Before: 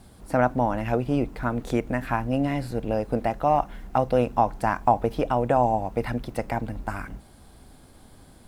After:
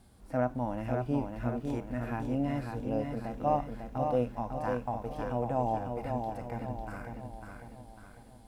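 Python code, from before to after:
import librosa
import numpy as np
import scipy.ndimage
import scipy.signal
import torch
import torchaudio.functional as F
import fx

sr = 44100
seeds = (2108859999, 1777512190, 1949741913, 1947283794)

y = fx.hpss(x, sr, part='percussive', gain_db=-13)
y = fx.echo_feedback(y, sr, ms=549, feedback_pct=47, wet_db=-5)
y = F.gain(torch.from_numpy(y), -6.0).numpy()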